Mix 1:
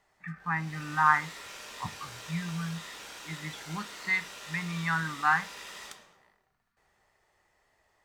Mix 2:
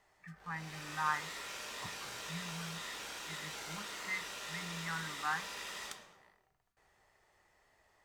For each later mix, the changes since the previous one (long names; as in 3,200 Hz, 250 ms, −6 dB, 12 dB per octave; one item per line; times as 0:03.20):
speech −11.5 dB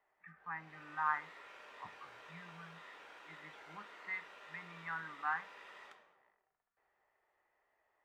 background −7.0 dB
master: add three-way crossover with the lows and the highs turned down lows −14 dB, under 310 Hz, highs −21 dB, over 2,700 Hz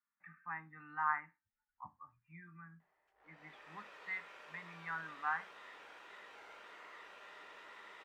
background: entry +2.80 s